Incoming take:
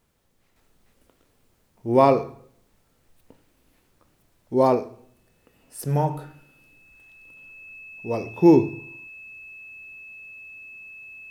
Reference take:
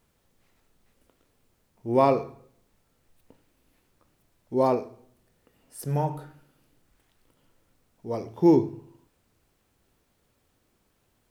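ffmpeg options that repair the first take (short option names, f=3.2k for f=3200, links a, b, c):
-af "bandreject=f=2.6k:w=30,asetnsamples=n=441:p=0,asendcmd='0.56 volume volume -4dB',volume=0dB"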